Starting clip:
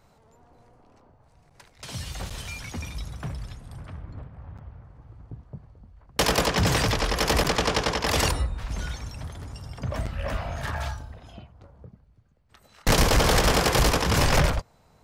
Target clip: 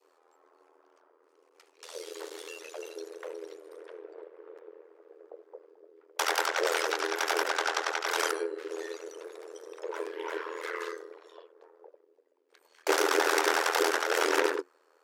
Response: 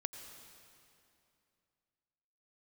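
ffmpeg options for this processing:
-af "adynamicequalizer=threshold=0.00708:dfrequency=1200:dqfactor=1.9:tfrequency=1200:tqfactor=1.9:attack=5:release=100:ratio=0.375:range=3.5:mode=boostabove:tftype=bell,afreqshift=360,tremolo=f=82:d=0.857,volume=-4dB"

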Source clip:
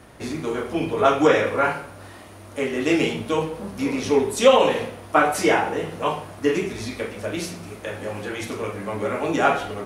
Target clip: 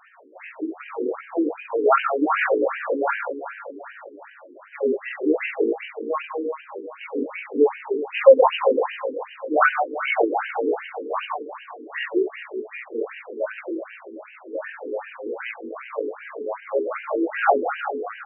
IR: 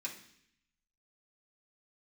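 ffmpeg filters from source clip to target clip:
-af "aecho=1:1:206|412|618|824|1030:0.251|0.126|0.0628|0.0314|0.0157,atempo=0.54,afftfilt=real='re*between(b*sr/1024,330*pow(2200/330,0.5+0.5*sin(2*PI*2.6*pts/sr))/1.41,330*pow(2200/330,0.5+0.5*sin(2*PI*2.6*pts/sr))*1.41)':imag='im*between(b*sr/1024,330*pow(2200/330,0.5+0.5*sin(2*PI*2.6*pts/sr))/1.41,330*pow(2200/330,0.5+0.5*sin(2*PI*2.6*pts/sr))*1.41)':win_size=1024:overlap=0.75,volume=4.5dB"

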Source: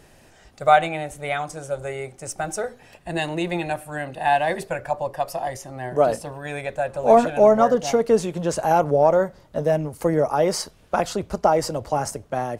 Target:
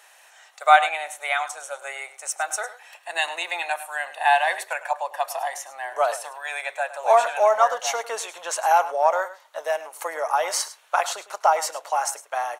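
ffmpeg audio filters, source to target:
ffmpeg -i in.wav -filter_complex "[0:a]highpass=frequency=800:width=0.5412,highpass=frequency=800:width=1.3066,bandreject=frequency=4900:width=6.7,asplit=2[link_01][link_02];[link_02]aecho=0:1:104:0.168[link_03];[link_01][link_03]amix=inputs=2:normalize=0,volume=4.5dB" out.wav

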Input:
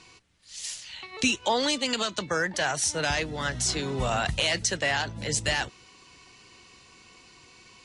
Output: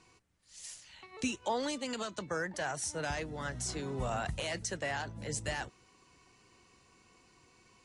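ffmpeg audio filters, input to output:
ffmpeg -i in.wav -af "equalizer=frequency=3600:width_type=o:width=1.7:gain=-8.5,volume=-7dB" out.wav

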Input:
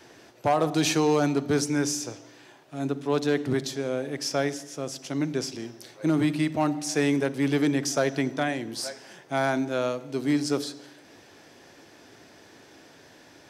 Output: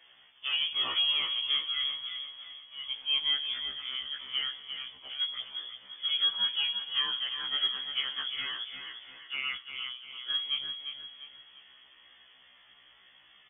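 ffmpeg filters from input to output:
ffmpeg -i in.wav -filter_complex "[0:a]lowshelf=frequency=95:gain=-9.5,asettb=1/sr,asplit=3[link_01][link_02][link_03];[link_01]atrim=end=2.894[link_04];[link_02]atrim=start=2.89:end=3.39,asetpts=PTS-STARTPTS,afade=type=in:duration=0.004:curve=qsin,afade=type=out:start_time=0.496:duration=0.004:curve=qsin,acrusher=bits=8:dc=4:mix=0:aa=0.000001[link_05];[link_03]atrim=start=3.386[link_06];[link_04][link_05]acrossfade=duration=0.004:curve1=hsin:curve2=qsin[link_07];[link_07][link_06]acrossfade=duration=0.004:curve1=qsin:curve2=hsin,asettb=1/sr,asplit=3[link_08][link_09][link_10];[link_08]atrim=end=9.564[link_11];[link_09]atrim=start=9.56:end=10.3,asetpts=PTS-STARTPTS,afade=type=in:duration=0.004:curve=qsin,afade=type=out:start_time=0.736:duration=0.004:curve=qsin,acompressor=threshold=-33dB:ratio=6[link_12];[link_10]atrim=start=10.296[link_13];[link_11][link_12]acrossfade=duration=0.004:curve1=hsin:curve2=qsin[link_14];[link_14][link_13]acrossfade=duration=0.004:curve1=qsin:curve2=hsin,flanger=delay=6.1:depth=7.1:regen=-70:speed=0.95:shape=sinusoidal,aecho=1:1:349|698|1047|1396|1745:0.398|0.159|0.0637|0.0255|0.0102,lowpass=frequency=3100:width_type=q:width=0.5098,lowpass=frequency=3100:width_type=q:width=0.6013,lowpass=frequency=3100:width_type=q:width=0.9,lowpass=frequency=3100:width_type=q:width=2.563,afreqshift=-3600,afftfilt=real='re*1.73*eq(mod(b,3),0)':imag='im*1.73*eq(mod(b,3),0)':win_size=2048:overlap=0.75" out.wav

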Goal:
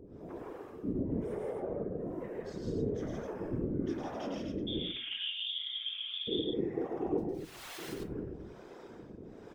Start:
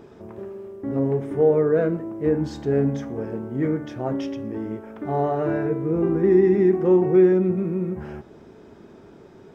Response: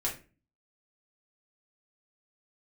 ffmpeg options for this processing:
-filter_complex "[0:a]acompressor=threshold=-36dB:ratio=1.5,alimiter=level_in=1dB:limit=-24dB:level=0:latency=1:release=105,volume=-1dB,asettb=1/sr,asplit=3[link_01][link_02][link_03];[link_01]atrim=end=7.184[link_04];[link_02]atrim=start=7.18:end=7.78,asetpts=PTS-STARTPTS,afade=type=in:duration=0.004:curve=qsin,afade=type=out:start_time=0.596:duration=0.004:curve=qsin,aeval=exprs='(mod(106*val(0)+1,2)-1)/106':channel_layout=same[link_05];[link_03]atrim=start=7.776[link_06];[link_04][link_05]acrossfade=duration=0.004:curve1=hsin:curve2=qsin[link_07];[link_07][link_06]acrossfade=duration=0.004:curve1=qsin:curve2=hsin,acrossover=split=430[link_08][link_09];[link_08]aeval=exprs='val(0)*(1-1/2+1/2*cos(2*PI*1.1*n/s))':channel_layout=same[link_10];[link_09]aeval=exprs='val(0)*(1-1/2-1/2*cos(2*PI*1.1*n/s))':channel_layout=same[link_11];[link_10][link_11]amix=inputs=2:normalize=0,asettb=1/sr,asplit=3[link_12][link_13][link_14];[link_12]atrim=end=4.674[link_15];[link_13]atrim=start=4.67:end=6.28,asetpts=PTS-STARTPTS,afade=type=in:duration=0.004:curve=qsin,afade=type=out:start_time=1.606:duration=0.004:curve=qsin,lowpass=frequency=3100:width_type=q:width=0.5098,lowpass=frequency=3100:width_type=q:width=0.6013,lowpass=frequency=3100:width_type=q:width=0.9,lowpass=frequency=3100:width_type=q:width=2.563,afreqshift=-3700[link_16];[link_14]atrim=start=6.276[link_17];[link_15][link_16]acrossfade=duration=0.004:curve1=hsin:curve2=qsin[link_18];[link_18][link_17]acrossfade=duration=0.004:curve1=qsin:curve2=hsin,aecho=1:1:107.9|160.3|253.6:0.708|0.891|0.562,asplit=2[link_19][link_20];[1:a]atrim=start_sample=2205[link_21];[link_20][link_21]afir=irnorm=-1:irlink=0,volume=-6.5dB[link_22];[link_19][link_22]amix=inputs=2:normalize=0,afftfilt=real='hypot(re,im)*cos(2*PI*random(0))':imag='hypot(re,im)*sin(2*PI*random(1))':win_size=512:overlap=0.75"

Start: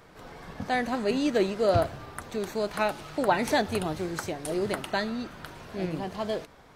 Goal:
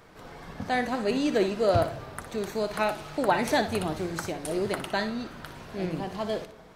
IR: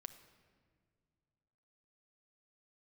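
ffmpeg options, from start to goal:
-filter_complex "[0:a]asplit=2[link_01][link_02];[1:a]atrim=start_sample=2205,adelay=60[link_03];[link_02][link_03]afir=irnorm=-1:irlink=0,volume=-5dB[link_04];[link_01][link_04]amix=inputs=2:normalize=0"

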